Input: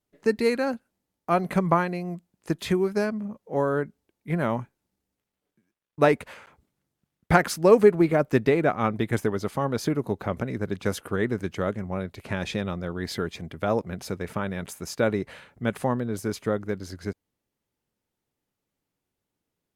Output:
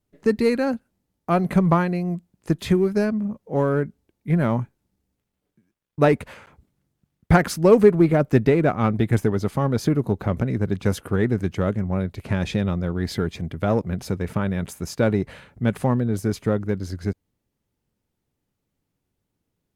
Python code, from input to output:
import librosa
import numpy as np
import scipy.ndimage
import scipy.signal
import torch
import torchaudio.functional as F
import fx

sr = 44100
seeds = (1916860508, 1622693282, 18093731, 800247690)

p1 = fx.low_shelf(x, sr, hz=250.0, db=10.5)
p2 = np.clip(p1, -10.0 ** (-18.5 / 20.0), 10.0 ** (-18.5 / 20.0))
p3 = p1 + F.gain(torch.from_numpy(p2), -10.0).numpy()
y = F.gain(torch.from_numpy(p3), -1.5).numpy()